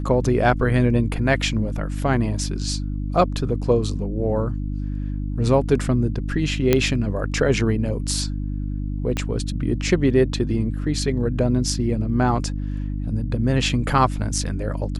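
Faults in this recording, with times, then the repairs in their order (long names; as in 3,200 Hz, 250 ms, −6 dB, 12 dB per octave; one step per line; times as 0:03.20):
mains hum 50 Hz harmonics 6 −26 dBFS
0:06.73: click −3 dBFS
0:09.17: click −11 dBFS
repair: click removal
hum removal 50 Hz, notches 6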